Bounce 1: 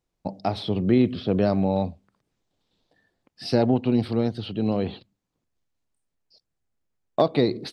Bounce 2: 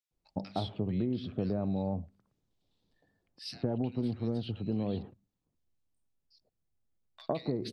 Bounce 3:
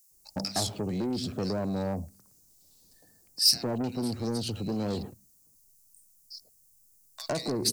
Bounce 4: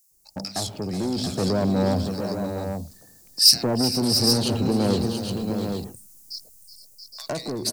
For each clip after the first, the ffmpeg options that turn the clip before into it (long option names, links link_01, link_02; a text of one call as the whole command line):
ffmpeg -i in.wav -filter_complex "[0:a]lowshelf=frequency=270:gain=7.5,acompressor=threshold=-21dB:ratio=6,acrossover=split=1700[link_01][link_02];[link_01]adelay=110[link_03];[link_03][link_02]amix=inputs=2:normalize=0,volume=-7.5dB" out.wav
ffmpeg -i in.wav -filter_complex "[0:a]acrossover=split=240[link_01][link_02];[link_01]alimiter=level_in=13dB:limit=-24dB:level=0:latency=1,volume=-13dB[link_03];[link_03][link_02]amix=inputs=2:normalize=0,asoftclip=type=tanh:threshold=-32.5dB,aexciter=amount=15.7:drive=4:freq=5100,volume=7.5dB" out.wav
ffmpeg -i in.wav -filter_complex "[0:a]dynaudnorm=framelen=220:gausssize=13:maxgain=11.5dB,asplit=2[link_01][link_02];[link_02]aecho=0:1:373|464|679|817:0.224|0.168|0.376|0.422[link_03];[link_01][link_03]amix=inputs=2:normalize=0" out.wav